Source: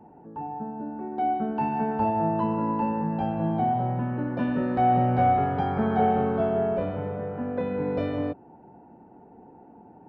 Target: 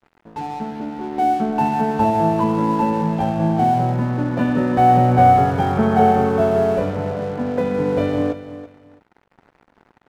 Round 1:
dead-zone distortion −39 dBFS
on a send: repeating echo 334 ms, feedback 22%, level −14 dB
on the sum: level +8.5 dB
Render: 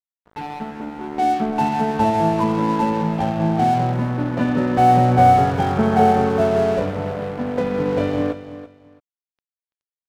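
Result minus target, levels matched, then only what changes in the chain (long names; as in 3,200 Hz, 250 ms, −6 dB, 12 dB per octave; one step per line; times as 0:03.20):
dead-zone distortion: distortion +6 dB
change: dead-zone distortion −45.5 dBFS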